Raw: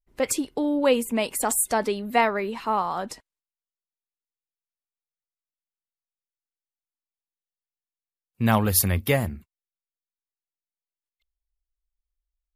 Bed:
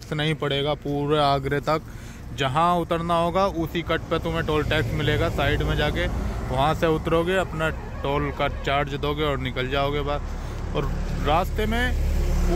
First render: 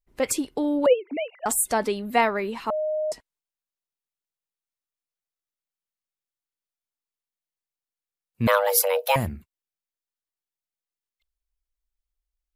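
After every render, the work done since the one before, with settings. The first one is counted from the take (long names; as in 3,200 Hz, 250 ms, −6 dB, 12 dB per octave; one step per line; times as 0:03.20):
0:00.86–0:01.46: three sine waves on the formant tracks
0:02.70–0:03.12: beep over 617 Hz −23 dBFS
0:08.47–0:09.16: frequency shifter +390 Hz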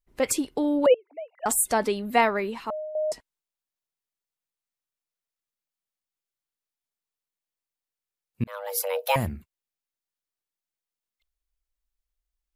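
0:00.94–0:01.38: four-pole ladder band-pass 830 Hz, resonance 45%
0:02.39–0:02.95: fade out, to −12 dB
0:08.44–0:09.30: fade in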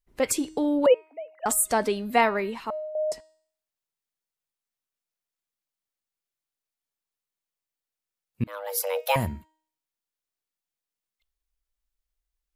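hum removal 314.3 Hz, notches 28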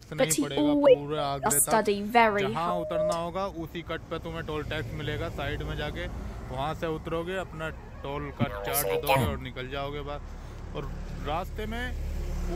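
mix in bed −10 dB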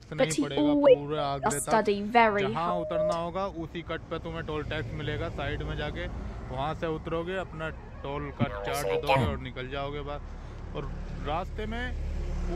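high-frequency loss of the air 70 metres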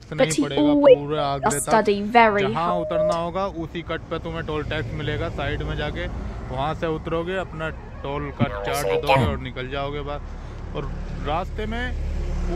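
level +6.5 dB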